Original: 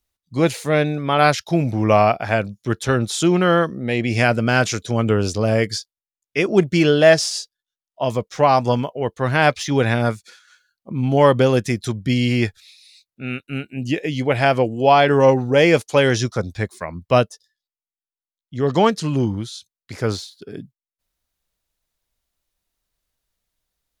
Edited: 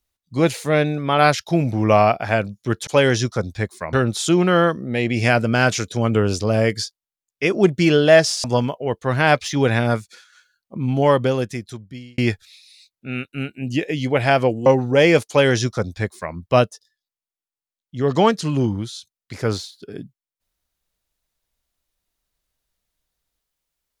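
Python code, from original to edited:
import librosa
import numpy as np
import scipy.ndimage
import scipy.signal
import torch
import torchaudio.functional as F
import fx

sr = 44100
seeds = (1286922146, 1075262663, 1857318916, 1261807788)

y = fx.edit(x, sr, fx.cut(start_s=7.38, length_s=1.21),
    fx.fade_out_span(start_s=10.92, length_s=1.41),
    fx.cut(start_s=14.81, length_s=0.44),
    fx.duplicate(start_s=15.87, length_s=1.06, to_s=2.87), tone=tone)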